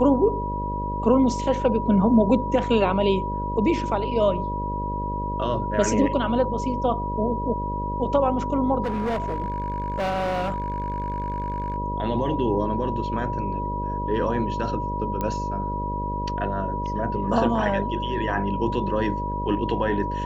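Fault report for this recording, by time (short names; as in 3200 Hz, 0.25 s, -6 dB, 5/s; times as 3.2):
buzz 50 Hz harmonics 12 -30 dBFS
tone 970 Hz -28 dBFS
8.83–11.76 clipped -22 dBFS
15.21 pop -14 dBFS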